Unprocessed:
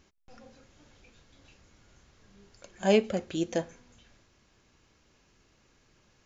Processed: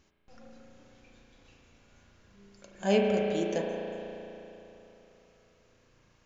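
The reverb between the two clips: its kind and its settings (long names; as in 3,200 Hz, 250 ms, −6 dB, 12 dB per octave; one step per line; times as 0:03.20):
spring reverb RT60 3.3 s, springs 35 ms, chirp 80 ms, DRR −0.5 dB
level −3.5 dB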